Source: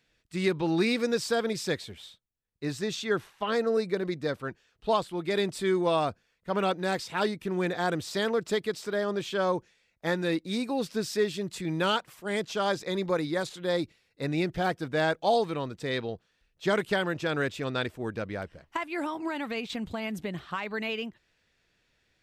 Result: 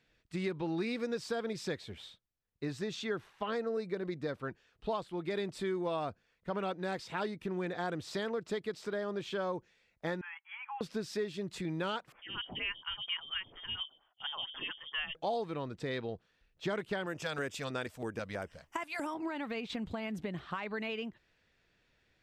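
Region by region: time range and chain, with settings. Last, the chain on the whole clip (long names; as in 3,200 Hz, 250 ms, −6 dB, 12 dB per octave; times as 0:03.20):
0:10.21–0:10.81: linear-phase brick-wall band-pass 780–3,400 Hz + downward compressor 3 to 1, threshold −38 dBFS
0:12.12–0:15.15: mains-hum notches 50/100/150/200/250/300/350/400/450 Hz + voice inversion scrambler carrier 3,400 Hz + phaser with staggered stages 4.3 Hz
0:17.06–0:19.14: bass and treble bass −4 dB, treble +14 dB + auto-filter notch square 3.1 Hz 350–4,100 Hz
whole clip: low-pass filter 3,500 Hz 6 dB per octave; downward compressor 2.5 to 1, threshold −36 dBFS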